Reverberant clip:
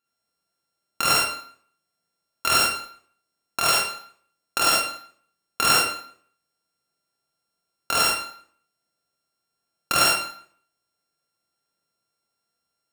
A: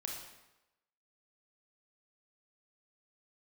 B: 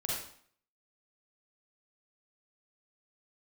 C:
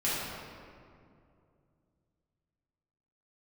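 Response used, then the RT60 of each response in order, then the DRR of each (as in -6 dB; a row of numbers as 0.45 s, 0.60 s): B; 0.95 s, 0.55 s, 2.4 s; -0.5 dB, -5.0 dB, -10.5 dB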